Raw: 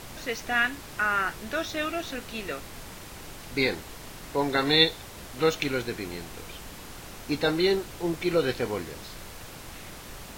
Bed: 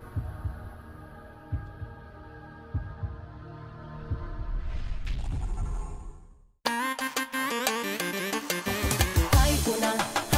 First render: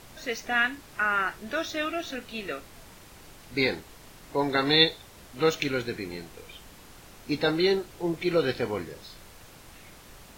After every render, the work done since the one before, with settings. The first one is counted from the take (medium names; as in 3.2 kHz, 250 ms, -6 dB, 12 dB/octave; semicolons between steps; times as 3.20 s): noise print and reduce 7 dB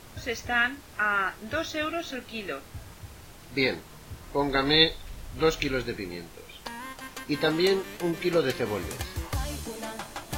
add bed -10.5 dB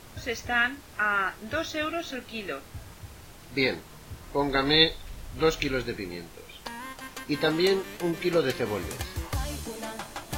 no audible change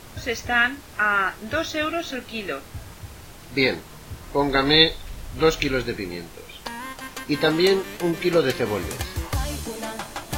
trim +5 dB; peak limiter -1 dBFS, peak gain reduction 1.5 dB